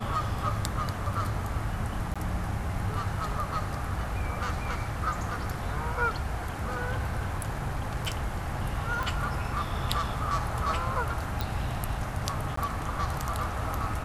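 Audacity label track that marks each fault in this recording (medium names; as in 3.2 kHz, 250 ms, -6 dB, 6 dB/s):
2.140000	2.160000	dropout 16 ms
6.610000	8.370000	clipped -24.5 dBFS
9.030000	9.030000	pop
11.410000	11.410000	pop
12.560000	12.570000	dropout 14 ms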